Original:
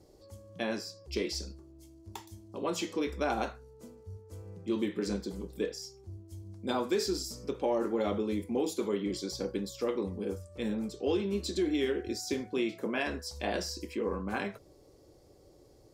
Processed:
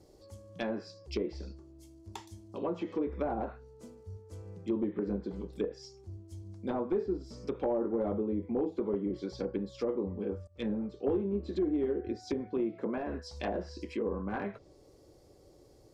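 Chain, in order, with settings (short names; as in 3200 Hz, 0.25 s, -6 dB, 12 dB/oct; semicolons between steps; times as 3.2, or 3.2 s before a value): one-sided fold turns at -24 dBFS; treble ducked by the level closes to 800 Hz, closed at -28.5 dBFS; 10.47–11.09 three-band expander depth 70%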